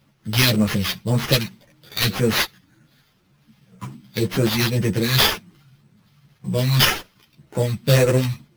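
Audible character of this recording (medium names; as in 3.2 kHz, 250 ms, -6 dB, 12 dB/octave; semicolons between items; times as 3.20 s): phasing stages 2, 1.9 Hz, lowest notch 490–4900 Hz; aliases and images of a low sample rate 8.2 kHz, jitter 0%; a shimmering, thickened sound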